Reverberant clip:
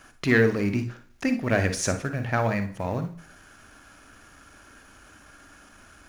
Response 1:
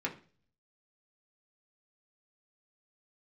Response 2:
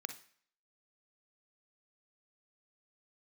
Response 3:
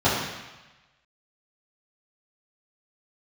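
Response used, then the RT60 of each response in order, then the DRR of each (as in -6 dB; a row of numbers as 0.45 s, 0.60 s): 2; 0.40 s, no single decay rate, 1.1 s; -2.5 dB, 8.0 dB, -13.0 dB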